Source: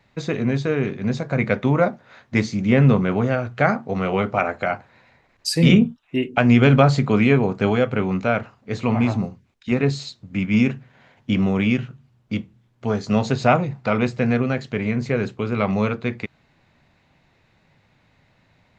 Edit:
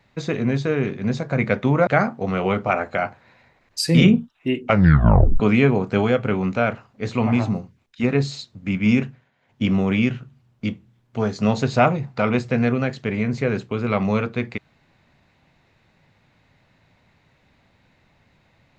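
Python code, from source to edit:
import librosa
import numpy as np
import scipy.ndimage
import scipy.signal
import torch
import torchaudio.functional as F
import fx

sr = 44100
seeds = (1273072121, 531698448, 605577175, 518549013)

y = fx.edit(x, sr, fx.cut(start_s=1.87, length_s=1.68),
    fx.tape_stop(start_s=6.33, length_s=0.75),
    fx.fade_down_up(start_s=10.74, length_s=0.59, db=-15.5, fade_s=0.25), tone=tone)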